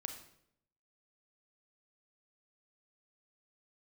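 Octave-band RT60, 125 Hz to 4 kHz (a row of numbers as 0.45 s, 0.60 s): 0.95 s, 0.85 s, 0.80 s, 0.65 s, 0.60 s, 0.55 s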